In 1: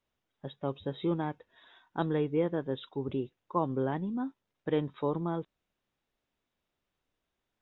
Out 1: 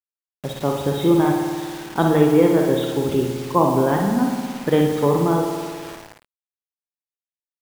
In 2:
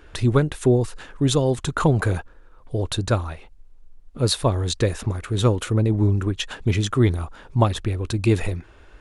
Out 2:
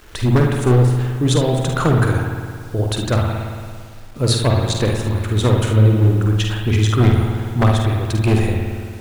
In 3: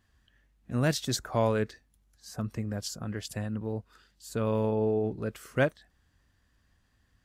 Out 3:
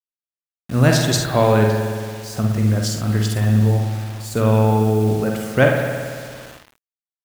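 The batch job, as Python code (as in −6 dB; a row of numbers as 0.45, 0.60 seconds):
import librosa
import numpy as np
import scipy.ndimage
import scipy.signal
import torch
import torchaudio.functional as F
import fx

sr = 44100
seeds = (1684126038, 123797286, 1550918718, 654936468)

y = np.minimum(x, 2.0 * 10.0 ** (-13.0 / 20.0) - x)
y = fx.rev_spring(y, sr, rt60_s=2.0, pass_ms=(56,), chirp_ms=70, drr_db=2.5)
y = fx.quant_dither(y, sr, seeds[0], bits=8, dither='none')
y = fx.echo_multitap(y, sr, ms=(47, 55, 73), db=(-8.0, -13.0, -11.5))
y = y * 10.0 ** (-1.5 / 20.0) / np.max(np.abs(y))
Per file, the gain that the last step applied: +11.5, +1.5, +10.0 decibels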